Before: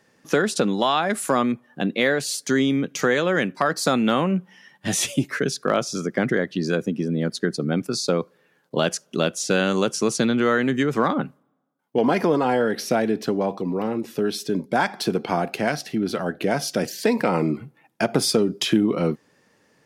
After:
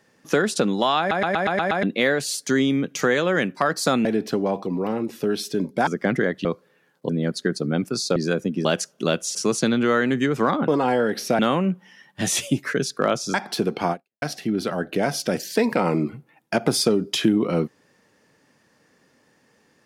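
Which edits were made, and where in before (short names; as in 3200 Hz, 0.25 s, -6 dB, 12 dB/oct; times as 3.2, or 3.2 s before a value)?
0.99 stutter in place 0.12 s, 7 plays
4.05–6 swap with 13–14.82
6.58–7.07 swap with 8.14–8.78
9.48–9.92 cut
11.25–12.29 cut
15.4–15.7 fade out exponential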